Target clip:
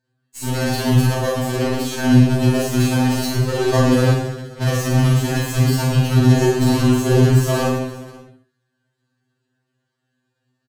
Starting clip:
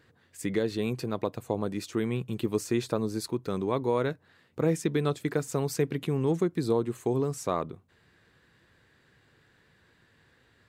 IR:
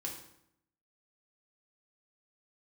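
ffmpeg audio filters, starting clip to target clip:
-filter_complex "[0:a]agate=range=-40dB:threshold=-50dB:ratio=16:detection=peak,equalizer=frequency=125:width_type=o:width=1:gain=11,equalizer=frequency=250:width_type=o:width=1:gain=5,equalizer=frequency=500:width_type=o:width=1:gain=-4,equalizer=frequency=2000:width_type=o:width=1:gain=-12,equalizer=frequency=4000:width_type=o:width=1:gain=-3,equalizer=frequency=8000:width_type=o:width=1:gain=4,asplit=2[link_01][link_02];[link_02]acompressor=threshold=-35dB:ratio=6,volume=1.5dB[link_03];[link_01][link_03]amix=inputs=2:normalize=0,asplit=2[link_04][link_05];[link_05]highpass=frequency=720:poles=1,volume=36dB,asoftclip=type=tanh:threshold=-9dB[link_06];[link_04][link_06]amix=inputs=2:normalize=0,lowpass=frequency=4500:poles=1,volume=-6dB,tremolo=f=16:d=0.89,aeval=exprs='0.355*(cos(1*acos(clip(val(0)/0.355,-1,1)))-cos(1*PI/2))+0.0251*(cos(3*acos(clip(val(0)/0.355,-1,1)))-cos(3*PI/2))+0.0141*(cos(4*acos(clip(val(0)/0.355,-1,1)))-cos(4*PI/2))+0.0891*(cos(7*acos(clip(val(0)/0.355,-1,1)))-cos(7*PI/2))':channel_layout=same,aecho=1:1:40|100|190|325|527.5:0.631|0.398|0.251|0.158|0.1[link_07];[1:a]atrim=start_sample=2205,atrim=end_sample=4410,asetrate=29988,aresample=44100[link_08];[link_07][link_08]afir=irnorm=-1:irlink=0,afftfilt=real='re*2.45*eq(mod(b,6),0)':imag='im*2.45*eq(mod(b,6),0)':win_size=2048:overlap=0.75,volume=1.5dB"

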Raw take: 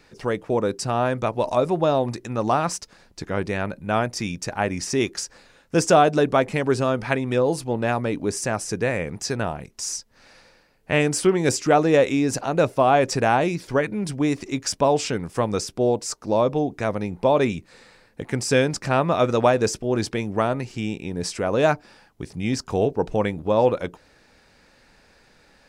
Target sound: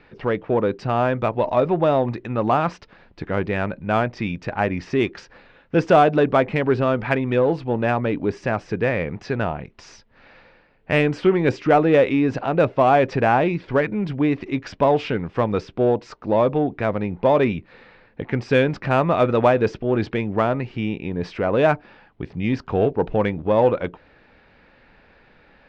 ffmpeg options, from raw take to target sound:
ffmpeg -i in.wav -filter_complex "[0:a]lowpass=frequency=3200:width=0.5412,lowpass=frequency=3200:width=1.3066,asplit=2[link_01][link_02];[link_02]asoftclip=type=tanh:threshold=-20dB,volume=-7dB[link_03];[link_01][link_03]amix=inputs=2:normalize=0" out.wav

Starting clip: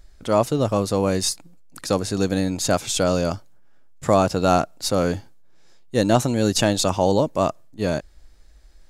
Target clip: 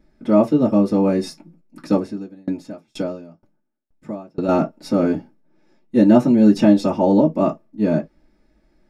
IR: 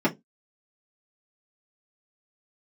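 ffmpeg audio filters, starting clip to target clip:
-filter_complex "[1:a]atrim=start_sample=2205,atrim=end_sample=3528[link_01];[0:a][link_01]afir=irnorm=-1:irlink=0,asettb=1/sr,asplit=3[link_02][link_03][link_04];[link_02]atrim=end=2.004[link_05];[link_03]atrim=start=2:end=4.49,asetpts=PTS-STARTPTS,afade=type=in:duration=0.004:curve=qsin,afade=type=out:start_time=2.486:duration=0.004:curve=qsin,aeval=exprs='val(0)*pow(10,-33*if(lt(mod(2.1*n/s,1),2*abs(2.1)/1000),1-mod(2.1*n/s,1)/(2*abs(2.1)/1000),(mod(2.1*n/s,1)-2*abs(2.1)/1000)/(1-2*abs(2.1)/1000))/20)':channel_layout=same[link_06];[link_04]atrim=start=4.486[link_07];[link_05][link_06]acrossfade=duration=0.004:curve1=hsin:curve2=qsin[link_08];[link_08][link_07]acrossfade=duration=0.004:curve1=qsin:curve2=hsin,volume=-15.5dB"

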